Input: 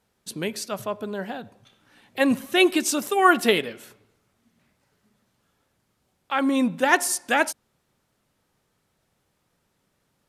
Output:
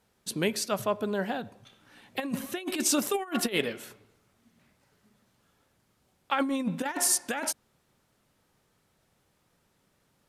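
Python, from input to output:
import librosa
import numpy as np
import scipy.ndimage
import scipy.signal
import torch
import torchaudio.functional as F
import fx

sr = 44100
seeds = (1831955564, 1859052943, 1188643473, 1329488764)

y = fx.over_compress(x, sr, threshold_db=-24.0, ratio=-0.5)
y = y * 10.0 ** (-3.0 / 20.0)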